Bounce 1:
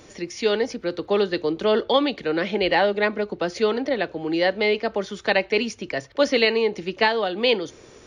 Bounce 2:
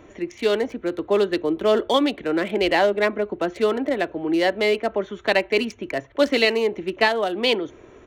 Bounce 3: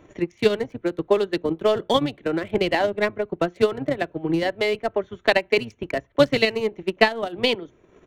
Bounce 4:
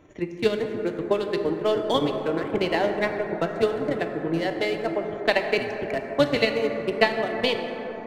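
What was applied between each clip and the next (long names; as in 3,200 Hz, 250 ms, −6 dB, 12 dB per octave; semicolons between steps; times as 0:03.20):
adaptive Wiener filter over 9 samples; comb filter 3 ms, depth 33%; level +1 dB
sub-octave generator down 1 octave, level −5 dB; transient designer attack +9 dB, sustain −7 dB; level −5 dB
dense smooth reverb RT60 4.8 s, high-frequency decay 0.25×, DRR 4 dB; level −3.5 dB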